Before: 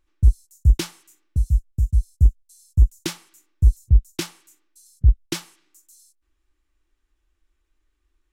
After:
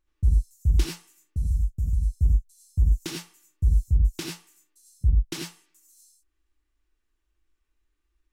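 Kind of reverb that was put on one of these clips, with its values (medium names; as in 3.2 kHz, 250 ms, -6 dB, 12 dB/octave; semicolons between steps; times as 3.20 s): gated-style reverb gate 120 ms rising, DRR -0.5 dB; trim -7.5 dB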